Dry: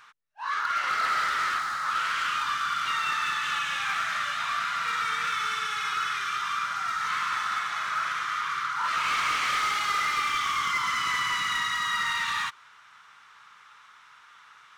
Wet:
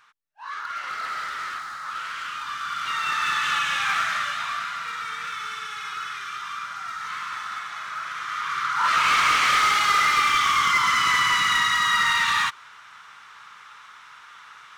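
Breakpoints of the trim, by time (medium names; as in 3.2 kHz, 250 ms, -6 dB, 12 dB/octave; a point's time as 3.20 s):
2.39 s -4.5 dB
3.37 s +5 dB
3.99 s +5 dB
4.93 s -3.5 dB
8.06 s -3.5 dB
8.87 s +7 dB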